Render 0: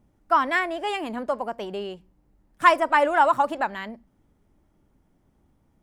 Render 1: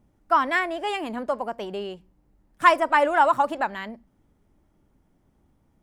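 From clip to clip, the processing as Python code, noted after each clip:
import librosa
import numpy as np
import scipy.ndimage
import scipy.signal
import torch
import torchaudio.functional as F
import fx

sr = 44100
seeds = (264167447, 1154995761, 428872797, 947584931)

y = x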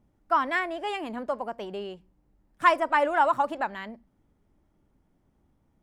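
y = fx.high_shelf(x, sr, hz=6300.0, db=-4.5)
y = F.gain(torch.from_numpy(y), -3.5).numpy()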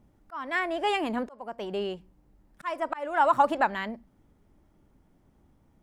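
y = fx.auto_swell(x, sr, attack_ms=537.0)
y = F.gain(torch.from_numpy(y), 5.0).numpy()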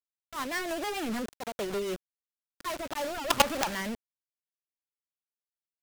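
y = fx.quant_companded(x, sr, bits=2)
y = fx.rotary_switch(y, sr, hz=6.7, then_hz=1.0, switch_at_s=2.33)
y = F.gain(torch.from_numpy(y), -4.0).numpy()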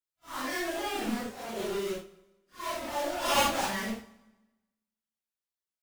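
y = fx.phase_scramble(x, sr, seeds[0], window_ms=200)
y = fx.rev_fdn(y, sr, rt60_s=1.1, lf_ratio=1.1, hf_ratio=0.9, size_ms=82.0, drr_db=13.0)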